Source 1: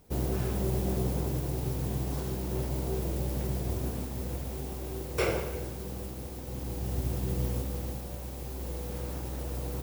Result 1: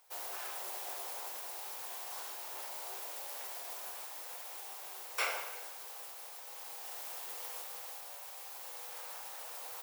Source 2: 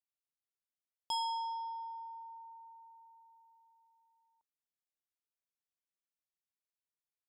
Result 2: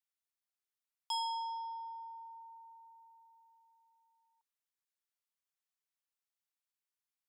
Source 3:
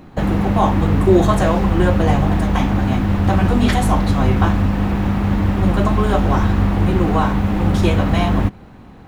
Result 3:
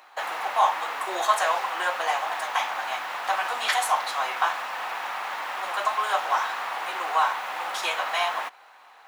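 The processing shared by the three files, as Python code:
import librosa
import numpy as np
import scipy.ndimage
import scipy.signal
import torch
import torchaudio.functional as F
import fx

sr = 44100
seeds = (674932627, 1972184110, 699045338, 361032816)

y = scipy.signal.sosfilt(scipy.signal.butter(4, 790.0, 'highpass', fs=sr, output='sos'), x)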